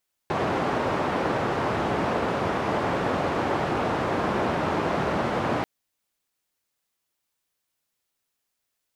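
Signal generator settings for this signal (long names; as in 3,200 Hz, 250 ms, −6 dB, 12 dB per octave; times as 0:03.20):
band-limited noise 98–880 Hz, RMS −25.5 dBFS 5.34 s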